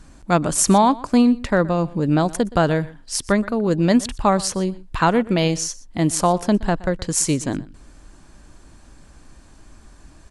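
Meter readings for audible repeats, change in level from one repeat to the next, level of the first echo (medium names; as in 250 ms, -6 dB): 1, no regular repeats, -20.5 dB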